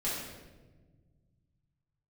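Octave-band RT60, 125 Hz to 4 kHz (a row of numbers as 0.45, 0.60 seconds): 3.2, 2.4, 1.6, 1.0, 0.95, 0.85 seconds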